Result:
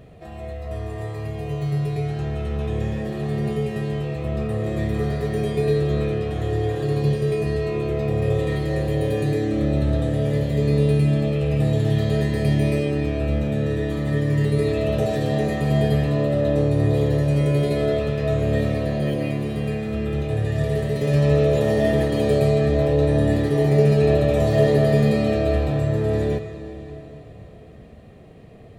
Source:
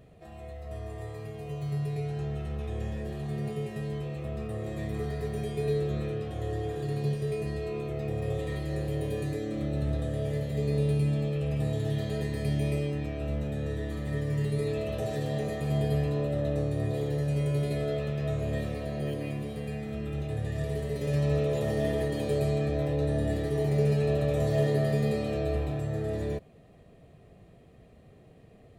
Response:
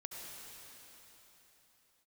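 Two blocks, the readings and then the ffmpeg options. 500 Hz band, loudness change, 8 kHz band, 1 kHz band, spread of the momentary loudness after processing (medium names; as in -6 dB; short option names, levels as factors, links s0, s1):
+10.0 dB, +9.5 dB, no reading, +9.5 dB, 9 LU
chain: -filter_complex "[0:a]asplit=2[s0][s1];[1:a]atrim=start_sample=2205,lowpass=6500[s2];[s1][s2]afir=irnorm=-1:irlink=0,volume=0.841[s3];[s0][s3]amix=inputs=2:normalize=0,volume=2"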